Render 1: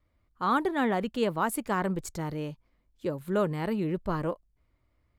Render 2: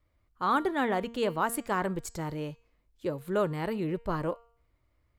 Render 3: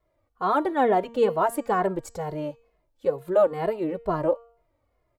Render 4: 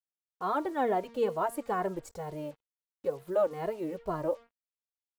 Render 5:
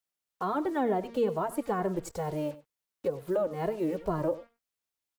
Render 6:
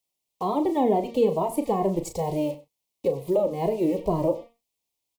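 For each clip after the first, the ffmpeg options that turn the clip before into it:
ffmpeg -i in.wav -af "equalizer=frequency=210:width=2:gain=-4.5,bandreject=frequency=233.1:width_type=h:width=4,bandreject=frequency=466.2:width_type=h:width=4,bandreject=frequency=699.3:width_type=h:width=4,bandreject=frequency=932.4:width_type=h:width=4,bandreject=frequency=1165.5:width_type=h:width=4,bandreject=frequency=1398.6:width_type=h:width=4,bandreject=frequency=1631.7:width_type=h:width=4,bandreject=frequency=1864.8:width_type=h:width=4,bandreject=frequency=2097.9:width_type=h:width=4,bandreject=frequency=2331:width_type=h:width=4,bandreject=frequency=2564.1:width_type=h:width=4,bandreject=frequency=2797.2:width_type=h:width=4,bandreject=frequency=3030.3:width_type=h:width=4,bandreject=frequency=3263.4:width_type=h:width=4,bandreject=frequency=3496.5:width_type=h:width=4,bandreject=frequency=3729.6:width_type=h:width=4,bandreject=frequency=3962.7:width_type=h:width=4,bandreject=frequency=4195.8:width_type=h:width=4,bandreject=frequency=4428.9:width_type=h:width=4,bandreject=frequency=4662:width_type=h:width=4,bandreject=frequency=4895.1:width_type=h:width=4,bandreject=frequency=5128.2:width_type=h:width=4,bandreject=frequency=5361.3:width_type=h:width=4,bandreject=frequency=5594.4:width_type=h:width=4,bandreject=frequency=5827.5:width_type=h:width=4,bandreject=frequency=6060.6:width_type=h:width=4,bandreject=frequency=6293.7:width_type=h:width=4,bandreject=frequency=6526.8:width_type=h:width=4,bandreject=frequency=6759.9:width_type=h:width=4,bandreject=frequency=6993:width_type=h:width=4,bandreject=frequency=7226.1:width_type=h:width=4,bandreject=frequency=7459.2:width_type=h:width=4,bandreject=frequency=7692.3:width_type=h:width=4,bandreject=frequency=7925.4:width_type=h:width=4" out.wav
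ffmpeg -i in.wav -filter_complex "[0:a]equalizer=frequency=600:width=0.79:gain=13.5,asplit=2[link_01][link_02];[link_02]adelay=2.4,afreqshift=-2.2[link_03];[link_01][link_03]amix=inputs=2:normalize=1" out.wav
ffmpeg -i in.wav -af "acrusher=bits=7:mix=0:aa=0.5,volume=-7.5dB" out.wav
ffmpeg -i in.wav -filter_complex "[0:a]acrossover=split=330[link_01][link_02];[link_02]acompressor=threshold=-37dB:ratio=4[link_03];[link_01][link_03]amix=inputs=2:normalize=0,aecho=1:1:96:0.133,volume=6.5dB" out.wav
ffmpeg -i in.wav -filter_complex "[0:a]asuperstop=centerf=1500:order=4:qfactor=1.3,asplit=2[link_01][link_02];[link_02]adelay=36,volume=-9.5dB[link_03];[link_01][link_03]amix=inputs=2:normalize=0,volume=6dB" out.wav

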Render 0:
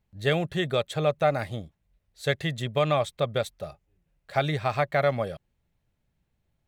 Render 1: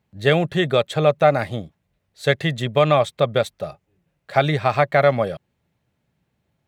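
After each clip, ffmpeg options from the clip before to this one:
ffmpeg -i in.wav -af "highpass=110,highshelf=frequency=4800:gain=-6,volume=8dB" out.wav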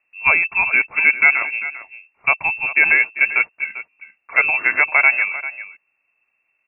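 ffmpeg -i in.wav -af "aecho=1:1:395:0.2,lowpass=frequency=2400:width_type=q:width=0.5098,lowpass=frequency=2400:width_type=q:width=0.6013,lowpass=frequency=2400:width_type=q:width=0.9,lowpass=frequency=2400:width_type=q:width=2.563,afreqshift=-2800,volume=1.5dB" out.wav

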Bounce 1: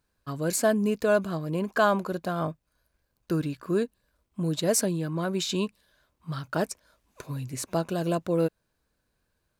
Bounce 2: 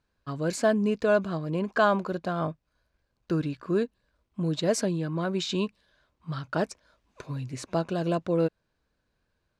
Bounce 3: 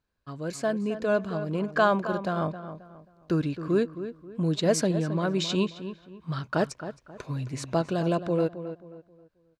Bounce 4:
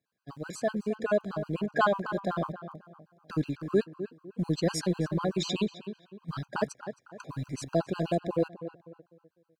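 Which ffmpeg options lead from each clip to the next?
ffmpeg -i in.wav -af "lowpass=5300" out.wav
ffmpeg -i in.wav -filter_complex "[0:a]dynaudnorm=framelen=200:gausssize=13:maxgain=7dB,asplit=2[link_01][link_02];[link_02]adelay=267,lowpass=frequency=2300:poles=1,volume=-11dB,asplit=2[link_03][link_04];[link_04]adelay=267,lowpass=frequency=2300:poles=1,volume=0.33,asplit=2[link_05][link_06];[link_06]adelay=267,lowpass=frequency=2300:poles=1,volume=0.33,asplit=2[link_07][link_08];[link_08]adelay=267,lowpass=frequency=2300:poles=1,volume=0.33[link_09];[link_01][link_03][link_05][link_07][link_09]amix=inputs=5:normalize=0,volume=-5dB" out.wav
ffmpeg -i in.wav -filter_complex "[0:a]acrossover=split=100|850[link_01][link_02][link_03];[link_01]acrusher=bits=6:dc=4:mix=0:aa=0.000001[link_04];[link_04][link_02][link_03]amix=inputs=3:normalize=0,afftfilt=real='re*gt(sin(2*PI*8*pts/sr)*(1-2*mod(floor(b*sr/1024/810),2)),0)':imag='im*gt(sin(2*PI*8*pts/sr)*(1-2*mod(floor(b*sr/1024/810),2)),0)':win_size=1024:overlap=0.75" out.wav

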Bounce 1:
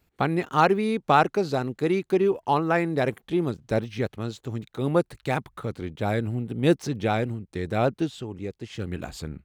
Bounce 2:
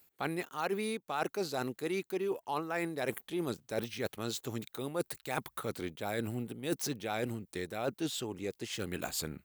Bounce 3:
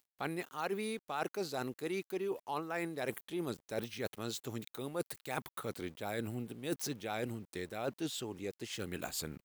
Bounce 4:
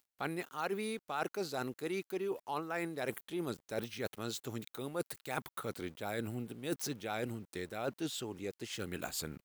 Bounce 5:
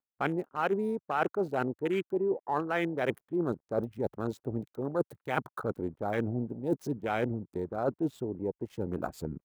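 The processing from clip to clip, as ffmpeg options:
ffmpeg -i in.wav -af "aemphasis=mode=production:type=bsi,areverse,acompressor=threshold=-31dB:ratio=10,areverse" out.wav
ffmpeg -i in.wav -af "aeval=exprs='val(0)*gte(abs(val(0)),0.00158)':channel_layout=same,volume=-3dB" out.wav
ffmpeg -i in.wav -af "equalizer=frequency=1400:width_type=o:width=0.21:gain=3" out.wav
ffmpeg -i in.wav -filter_complex "[0:a]afwtdn=0.00794,acrossover=split=840|1600[link_01][link_02][link_03];[link_03]aeval=exprs='sgn(val(0))*max(abs(val(0))-0.001,0)':channel_layout=same[link_04];[link_01][link_02][link_04]amix=inputs=3:normalize=0,volume=8dB" out.wav

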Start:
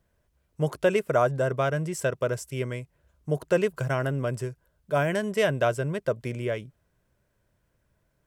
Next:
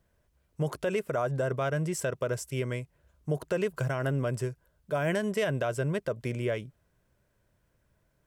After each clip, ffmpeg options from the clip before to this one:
ffmpeg -i in.wav -af "alimiter=limit=-20dB:level=0:latency=1:release=74" out.wav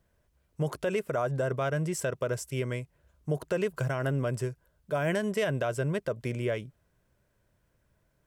ffmpeg -i in.wav -af anull out.wav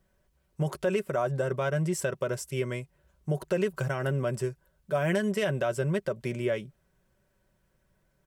ffmpeg -i in.wav -af "aecho=1:1:5.3:0.49" out.wav

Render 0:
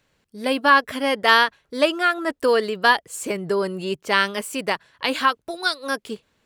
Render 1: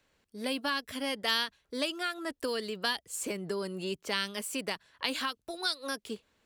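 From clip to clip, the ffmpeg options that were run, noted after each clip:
ffmpeg -i in.wav -filter_complex "[0:a]acrossover=split=220|3000[link_01][link_02][link_03];[link_02]acompressor=threshold=-31dB:ratio=4[link_04];[link_01][link_04][link_03]amix=inputs=3:normalize=0,equalizer=frequency=140:width_type=o:width=0.64:gain=-7,volume=-4.5dB" out.wav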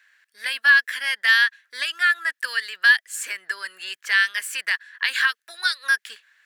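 ffmpeg -i in.wav -filter_complex "[0:a]asplit=2[link_01][link_02];[link_02]alimiter=limit=-21dB:level=0:latency=1,volume=0dB[link_03];[link_01][link_03]amix=inputs=2:normalize=0,highpass=frequency=1700:width_type=q:width=7.7" out.wav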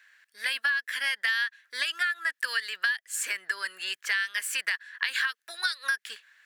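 ffmpeg -i in.wav -af "acompressor=threshold=-24dB:ratio=16" out.wav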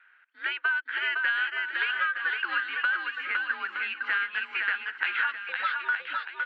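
ffmpeg -i in.wav -filter_complex "[0:a]asplit=2[link_01][link_02];[link_02]aecho=0:1:510|918|1244|1506|1714:0.631|0.398|0.251|0.158|0.1[link_03];[link_01][link_03]amix=inputs=2:normalize=0,highpass=frequency=450:width_type=q:width=0.5412,highpass=frequency=450:width_type=q:width=1.307,lowpass=frequency=3100:width_type=q:width=0.5176,lowpass=frequency=3100:width_type=q:width=0.7071,lowpass=frequency=3100:width_type=q:width=1.932,afreqshift=-160" out.wav

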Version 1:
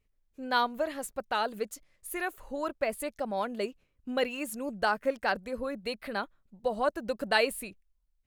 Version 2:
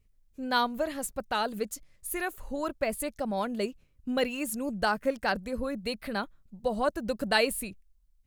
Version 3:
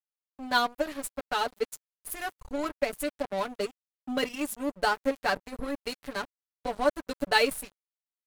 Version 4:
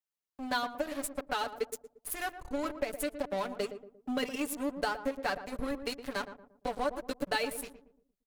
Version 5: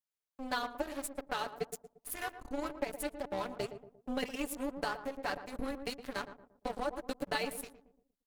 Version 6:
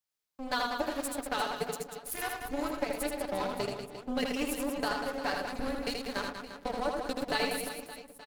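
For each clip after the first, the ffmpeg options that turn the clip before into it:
ffmpeg -i in.wav -af "bass=frequency=250:gain=9,treble=frequency=4000:gain=5" out.wav
ffmpeg -i in.wav -af "aecho=1:1:6.9:0.93,aeval=exprs='sgn(val(0))*max(abs(val(0))-0.0178,0)':channel_layout=same" out.wav
ffmpeg -i in.wav -filter_complex "[0:a]acompressor=threshold=-29dB:ratio=4,asplit=2[link_01][link_02];[link_02]adelay=116,lowpass=frequency=810:poles=1,volume=-8.5dB,asplit=2[link_03][link_04];[link_04]adelay=116,lowpass=frequency=810:poles=1,volume=0.44,asplit=2[link_05][link_06];[link_06]adelay=116,lowpass=frequency=810:poles=1,volume=0.44,asplit=2[link_07][link_08];[link_08]adelay=116,lowpass=frequency=810:poles=1,volume=0.44,asplit=2[link_09][link_10];[link_10]adelay=116,lowpass=frequency=810:poles=1,volume=0.44[link_11];[link_03][link_05][link_07][link_09][link_11]amix=inputs=5:normalize=0[link_12];[link_01][link_12]amix=inputs=2:normalize=0" out.wav
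ffmpeg -i in.wav -af "tremolo=f=270:d=0.75" out.wav
ffmpeg -i in.wav -af "equalizer=frequency=4700:width=1.8:gain=3,aecho=1:1:80|192|348.8|568.3|875.6:0.631|0.398|0.251|0.158|0.1,volume=2.5dB" out.wav

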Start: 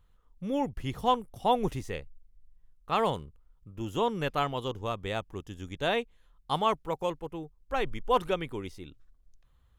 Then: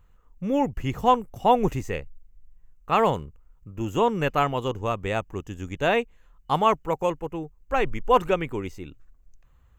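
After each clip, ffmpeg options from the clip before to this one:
ffmpeg -i in.wav -af "superequalizer=13b=0.398:14b=0.501:16b=0.316,volume=6.5dB" out.wav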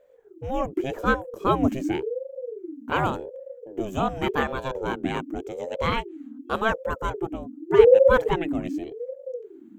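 ffmpeg -i in.wav -af "asubboost=boost=7:cutoff=65,aeval=exprs='val(0)*sin(2*PI*400*n/s+400*0.35/0.87*sin(2*PI*0.87*n/s))':channel_layout=same" out.wav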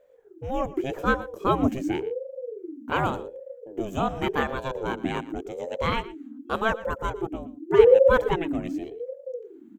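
ffmpeg -i in.wav -af "aecho=1:1:118:0.126,volume=-1dB" out.wav

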